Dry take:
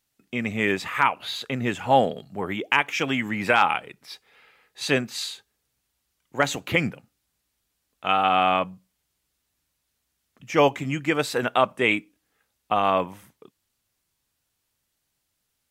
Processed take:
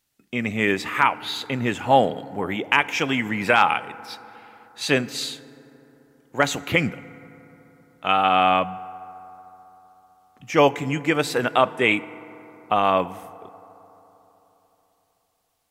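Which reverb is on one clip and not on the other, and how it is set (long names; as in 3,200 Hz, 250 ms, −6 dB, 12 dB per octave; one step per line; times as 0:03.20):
feedback delay network reverb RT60 3.8 s, high-frequency decay 0.35×, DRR 17 dB
level +2 dB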